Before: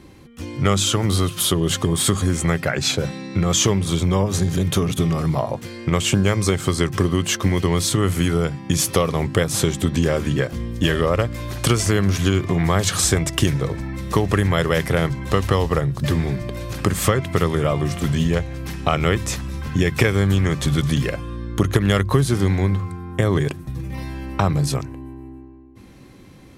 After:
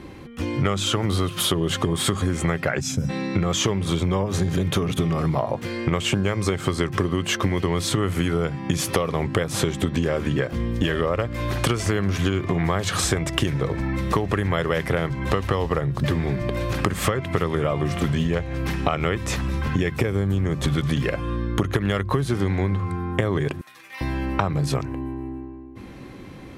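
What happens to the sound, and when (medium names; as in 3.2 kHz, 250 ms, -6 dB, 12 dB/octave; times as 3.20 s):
2.80–3.09 s: time-frequency box 280–4900 Hz -17 dB
19.96–20.64 s: peaking EQ 2.2 kHz -8.5 dB 3 oct
23.61–24.01 s: high-pass 1.5 kHz
whole clip: tone controls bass -3 dB, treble -9 dB; compression 4:1, threshold -27 dBFS; trim +7 dB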